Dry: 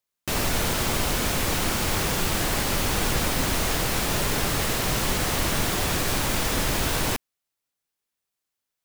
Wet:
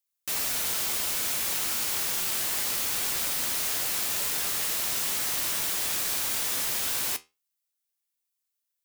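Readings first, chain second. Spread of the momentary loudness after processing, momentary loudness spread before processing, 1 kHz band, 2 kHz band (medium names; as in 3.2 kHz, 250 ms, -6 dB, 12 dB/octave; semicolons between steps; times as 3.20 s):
0 LU, 0 LU, -10.5 dB, -7.0 dB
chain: tilt EQ +3.5 dB/octave; flange 0.25 Hz, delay 9.5 ms, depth 8.7 ms, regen +71%; trim -6 dB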